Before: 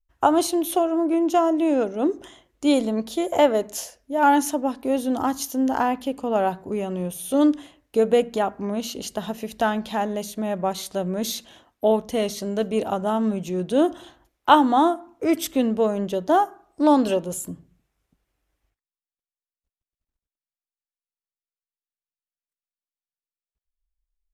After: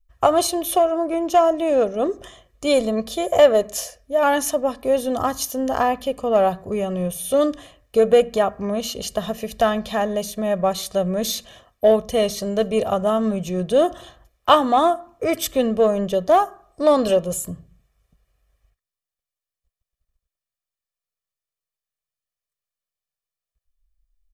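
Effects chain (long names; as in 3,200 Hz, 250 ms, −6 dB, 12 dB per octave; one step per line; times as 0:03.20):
low-shelf EQ 94 Hz +6.5 dB
comb filter 1.7 ms, depth 64%
in parallel at −10 dB: hard clipping −14.5 dBFS, distortion −12 dB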